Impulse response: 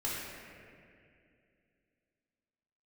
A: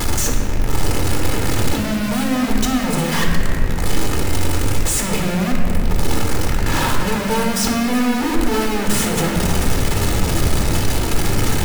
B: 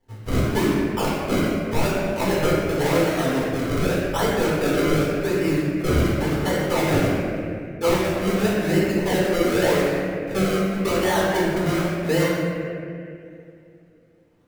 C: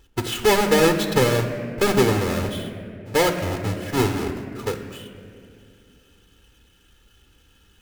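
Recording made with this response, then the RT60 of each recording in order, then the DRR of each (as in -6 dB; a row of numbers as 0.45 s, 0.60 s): B; 2.4 s, 2.4 s, 2.4 s; 0.5 dB, -7.5 dB, 6.0 dB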